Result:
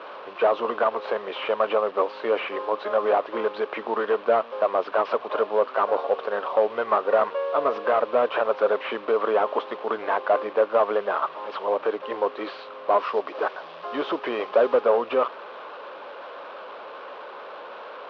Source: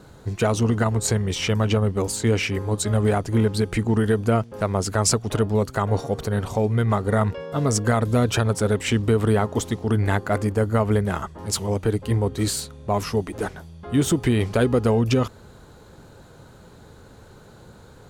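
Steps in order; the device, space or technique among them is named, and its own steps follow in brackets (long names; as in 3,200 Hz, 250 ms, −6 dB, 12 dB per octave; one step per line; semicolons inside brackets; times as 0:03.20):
digital answering machine (band-pass filter 370–3,100 Hz; linear delta modulator 32 kbit/s, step −38 dBFS; loudspeaker in its box 480–3,200 Hz, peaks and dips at 570 Hz +8 dB, 1,100 Hz +9 dB, 2,000 Hz −6 dB)
0:12.99–0:14.81: parametric band 5,400 Hz +4.5 dB 0.92 octaves
level +3.5 dB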